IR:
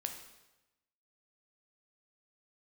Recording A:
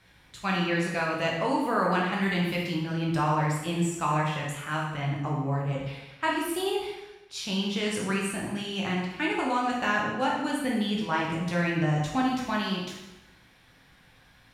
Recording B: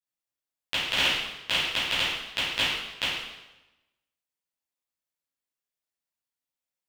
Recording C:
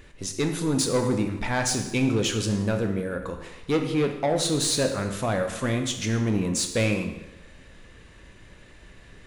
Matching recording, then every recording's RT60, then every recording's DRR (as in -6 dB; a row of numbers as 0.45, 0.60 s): C; 1.0, 1.0, 1.0 s; -3.5, -13.0, 4.5 dB